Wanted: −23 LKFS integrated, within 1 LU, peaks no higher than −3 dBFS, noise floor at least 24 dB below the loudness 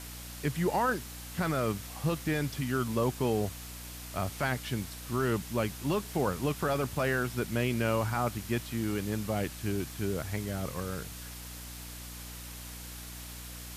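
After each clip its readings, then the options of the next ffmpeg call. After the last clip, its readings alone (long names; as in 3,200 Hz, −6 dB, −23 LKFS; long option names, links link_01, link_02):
mains hum 60 Hz; hum harmonics up to 300 Hz; level of the hum −43 dBFS; background noise floor −44 dBFS; target noise floor −57 dBFS; integrated loudness −33.0 LKFS; sample peak −18.0 dBFS; target loudness −23.0 LKFS
→ -af "bandreject=frequency=60:width_type=h:width=4,bandreject=frequency=120:width_type=h:width=4,bandreject=frequency=180:width_type=h:width=4,bandreject=frequency=240:width_type=h:width=4,bandreject=frequency=300:width_type=h:width=4"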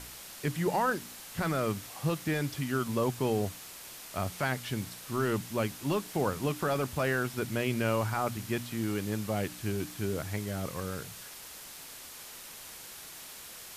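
mains hum none found; background noise floor −47 dBFS; target noise floor −57 dBFS
→ -af "afftdn=noise_reduction=10:noise_floor=-47"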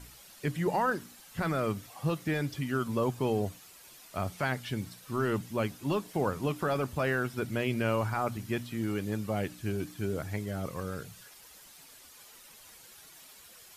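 background noise floor −54 dBFS; target noise floor −57 dBFS
→ -af "afftdn=noise_reduction=6:noise_floor=-54"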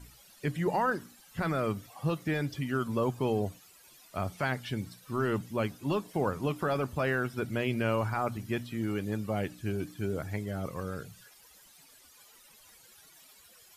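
background noise floor −58 dBFS; integrated loudness −33.0 LKFS; sample peak −18.5 dBFS; target loudness −23.0 LKFS
→ -af "volume=10dB"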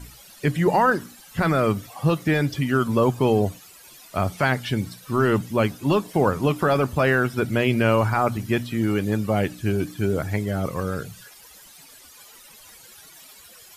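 integrated loudness −23.0 LKFS; sample peak −8.5 dBFS; background noise floor −48 dBFS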